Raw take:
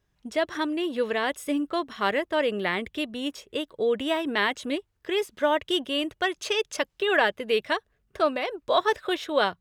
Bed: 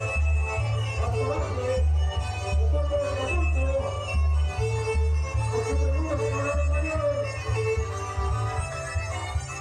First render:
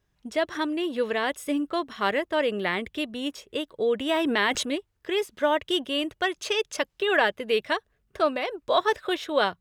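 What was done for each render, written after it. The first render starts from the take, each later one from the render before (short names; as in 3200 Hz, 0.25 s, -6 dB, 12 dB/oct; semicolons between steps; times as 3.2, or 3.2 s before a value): 4.09–4.63 fast leveller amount 70%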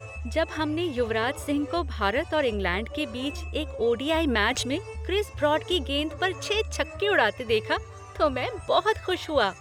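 add bed -12 dB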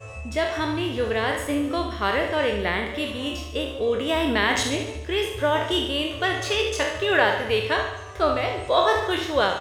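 spectral trails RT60 0.52 s; feedback echo 73 ms, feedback 58%, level -10 dB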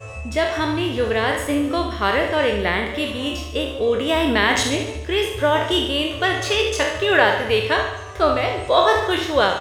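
gain +4 dB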